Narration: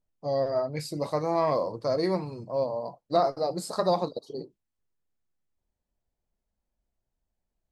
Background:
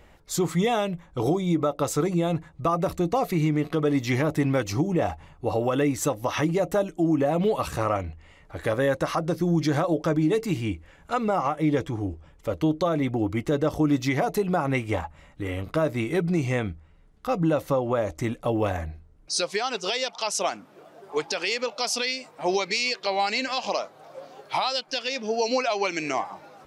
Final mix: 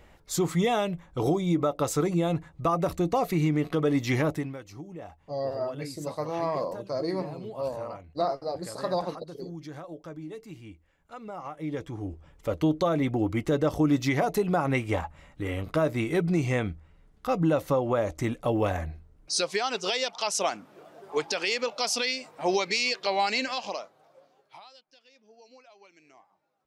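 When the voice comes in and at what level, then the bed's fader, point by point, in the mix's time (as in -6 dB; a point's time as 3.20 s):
5.05 s, -4.0 dB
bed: 4.29 s -1.5 dB
4.58 s -17.5 dB
11.14 s -17.5 dB
12.39 s -1 dB
23.40 s -1 dB
24.94 s -30 dB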